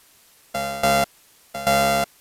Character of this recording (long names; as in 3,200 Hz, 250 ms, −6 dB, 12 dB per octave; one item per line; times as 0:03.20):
a buzz of ramps at a fixed pitch in blocks of 64 samples
tremolo saw down 1.2 Hz, depth 85%
a quantiser's noise floor 10 bits, dither triangular
Ogg Vorbis